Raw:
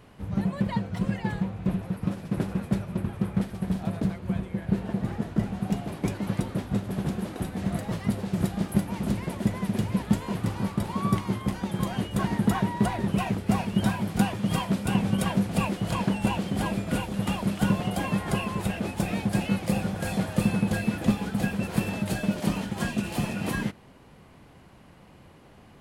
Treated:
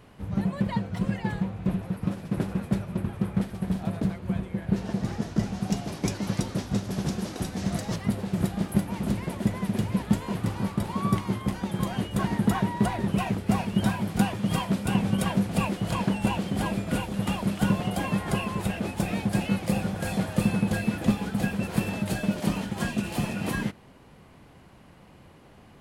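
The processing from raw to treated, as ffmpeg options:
ffmpeg -i in.wav -filter_complex "[0:a]asettb=1/sr,asplit=3[link_01][link_02][link_03];[link_01]atrim=end=4.764[link_04];[link_02]atrim=start=4.76:end=7.96,asetpts=PTS-STARTPTS,afade=type=in:duration=0.004:curve=qsin,afade=type=out:start_time=3.196:duration=0.004:curve=qsin,equalizer=frequency=5700:width_type=o:width=1:gain=12.5[link_05];[link_03]atrim=start=7.956[link_06];[link_04][link_05]acrossfade=duration=0.004:curve1=hsin:curve2=qsin[link_07];[link_07][link_06]acrossfade=duration=0.004:curve1=qsin:curve2=hsin" out.wav

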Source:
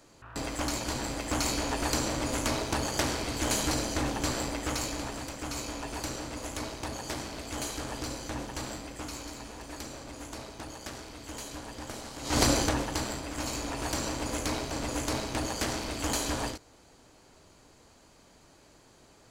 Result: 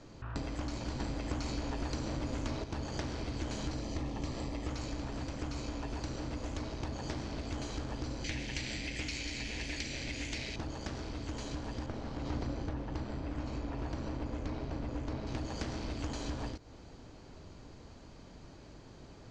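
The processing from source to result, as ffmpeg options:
ffmpeg -i in.wav -filter_complex "[0:a]asettb=1/sr,asplit=3[link_01][link_02][link_03];[link_01]atrim=end=3.804[link_04];[link_02]atrim=start=3.8:end=4.69,asetpts=PTS-STARTPTS,afade=type=in:duration=0.004:curve=qsin,afade=type=out:start_time=0.886:duration=0.004:curve=qsin,asuperstop=centerf=1500:order=4:qfactor=6[link_05];[link_03]atrim=start=4.686[link_06];[link_04][link_05]acrossfade=duration=0.004:curve1=hsin:curve2=qsin[link_07];[link_07][link_06]acrossfade=duration=0.004:curve1=qsin:curve2=hsin,asettb=1/sr,asplit=3[link_08][link_09][link_10];[link_08]atrim=end=8.244[link_11];[link_09]atrim=start=8.24:end=10.56,asetpts=PTS-STARTPTS,afade=type=in:duration=0.004:curve=qsin,afade=type=out:start_time=2.316:duration=0.004:curve=qsin,highshelf=frequency=1600:width_type=q:width=3:gain=10[link_12];[link_10]atrim=start=10.556[link_13];[link_11][link_12]acrossfade=duration=0.004:curve1=hsin:curve2=qsin[link_14];[link_14][link_13]acrossfade=duration=0.004:curve1=qsin:curve2=hsin,asettb=1/sr,asplit=3[link_15][link_16][link_17];[link_15]atrim=end=11.864[link_18];[link_16]atrim=start=11.86:end=15.27,asetpts=PTS-STARTPTS,afade=type=in:duration=0.004:curve=qsin,afade=type=out:start_time=3.406:duration=0.004:curve=qsin,lowpass=frequency=2000:poles=1[link_19];[link_17]atrim=start=15.266[link_20];[link_18][link_19]acrossfade=duration=0.004:curve1=hsin:curve2=qsin[link_21];[link_21][link_20]acrossfade=duration=0.004:curve1=qsin:curve2=hsin,asplit=3[link_22][link_23][link_24];[link_22]atrim=end=1.002[link_25];[link_23]atrim=start=0.998:end=2.642,asetpts=PTS-STARTPTS,volume=7.5dB[link_26];[link_24]atrim=start=2.638[link_27];[link_25][link_26]acrossfade=duration=0.004:curve1=hsin:curve2=hsin[link_28];[link_28][link_27]acrossfade=duration=0.004:curve1=hsin:curve2=hsin,lowpass=frequency=6100:width=0.5412,lowpass=frequency=6100:width=1.3066,lowshelf=frequency=330:gain=11.5,acompressor=threshold=-35dB:ratio=6" out.wav

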